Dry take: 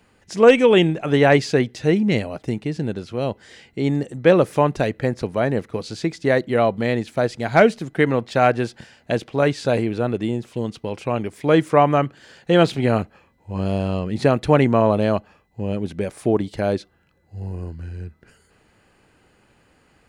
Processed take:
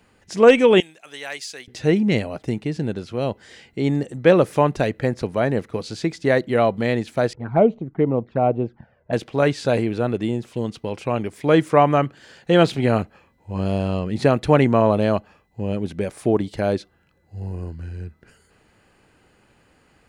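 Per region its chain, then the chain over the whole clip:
0.80–1.68 s: differentiator + tape noise reduction on one side only decoder only
7.33–9.13 s: low-pass 1.2 kHz + touch-sensitive flanger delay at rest 2.3 ms, full sweep at -16 dBFS + tape noise reduction on one side only decoder only
whole clip: none

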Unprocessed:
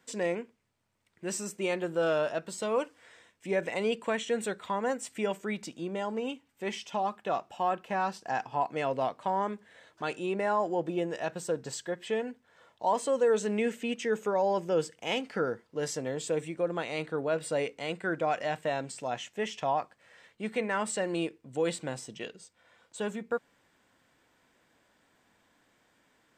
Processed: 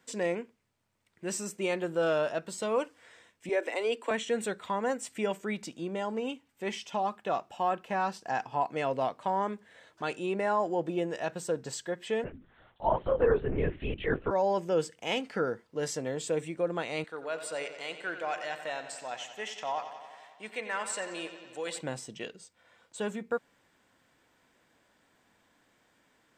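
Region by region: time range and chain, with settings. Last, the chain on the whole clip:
3.49–4.11 s: steep high-pass 250 Hz 72 dB/octave + band-stop 6.6 kHz, Q 14
12.24–14.31 s: low-pass that closes with the level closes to 2.1 kHz, closed at -26 dBFS + hum notches 50/100/150/200/250 Hz + LPC vocoder at 8 kHz whisper
17.04–21.81 s: high-pass 1.1 kHz 6 dB/octave + bucket-brigade echo 90 ms, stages 4096, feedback 71%, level -11 dB
whole clip: none

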